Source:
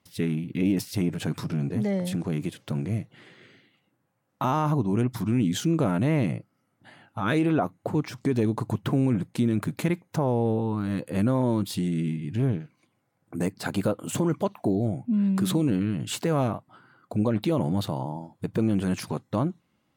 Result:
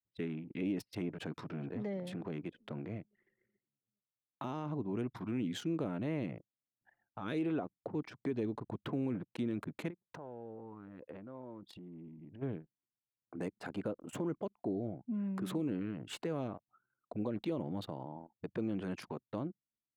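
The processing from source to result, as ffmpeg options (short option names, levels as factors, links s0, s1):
-filter_complex "[0:a]asplit=2[s0][s1];[s1]afade=t=in:st=1.08:d=0.01,afade=t=out:st=1.89:d=0.01,aecho=0:1:420|840|1260|1680|2100:0.141254|0.0776896|0.0427293|0.0235011|0.0129256[s2];[s0][s2]amix=inputs=2:normalize=0,asplit=3[s3][s4][s5];[s3]afade=t=out:st=9.89:d=0.02[s6];[s4]acompressor=threshold=0.0224:ratio=10:attack=3.2:release=140:knee=1:detection=peak,afade=t=in:st=9.89:d=0.02,afade=t=out:st=12.41:d=0.02[s7];[s5]afade=t=in:st=12.41:d=0.02[s8];[s6][s7][s8]amix=inputs=3:normalize=0,asettb=1/sr,asplit=3[s9][s10][s11];[s9]atrim=end=13.504[s12];[s10]atrim=start=13.5:end=16.13,asetpts=PTS-STARTPTS,afade=t=in:d=0.004:c=qsin,afade=t=out:st=2.626:d=0.004:c=qsin,equalizer=f=3900:w=1.5:g=-5[s13];[s11]atrim=start=16.126[s14];[s12][s13]acrossfade=d=0.004:c1=hsin:c2=qsin[s15];[s15][s14]acrossfade=d=0.004:c1=qsin:c2=hsin,acrossover=split=430|3000[s16][s17][s18];[s17]acompressor=threshold=0.01:ratio=4[s19];[s16][s19][s18]amix=inputs=3:normalize=0,bass=f=250:g=-12,treble=f=4000:g=-12,anlmdn=0.1,volume=0.531"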